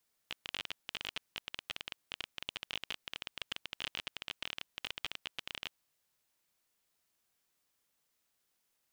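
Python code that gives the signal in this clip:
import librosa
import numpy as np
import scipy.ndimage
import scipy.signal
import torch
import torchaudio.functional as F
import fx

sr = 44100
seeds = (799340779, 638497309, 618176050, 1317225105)

y = fx.geiger_clicks(sr, seeds[0], length_s=5.42, per_s=23.0, level_db=-21.0)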